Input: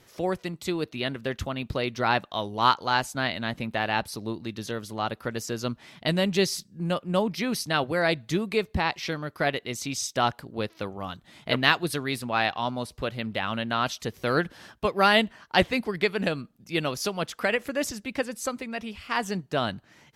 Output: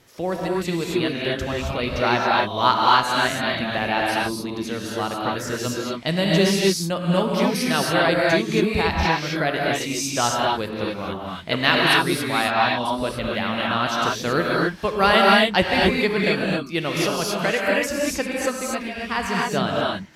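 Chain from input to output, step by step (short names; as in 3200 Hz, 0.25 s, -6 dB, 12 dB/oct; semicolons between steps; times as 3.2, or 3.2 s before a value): non-linear reverb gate 0.3 s rising, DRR -3.5 dB; gain +1.5 dB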